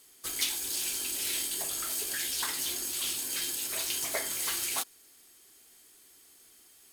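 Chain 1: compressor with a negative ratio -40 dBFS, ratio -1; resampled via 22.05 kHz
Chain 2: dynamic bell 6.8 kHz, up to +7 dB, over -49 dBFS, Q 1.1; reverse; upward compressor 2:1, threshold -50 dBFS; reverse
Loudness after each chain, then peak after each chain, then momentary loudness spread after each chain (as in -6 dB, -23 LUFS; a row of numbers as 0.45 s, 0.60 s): -38.5 LUFS, -26.5 LUFS; -26.5 dBFS, -9.5 dBFS; 13 LU, 1 LU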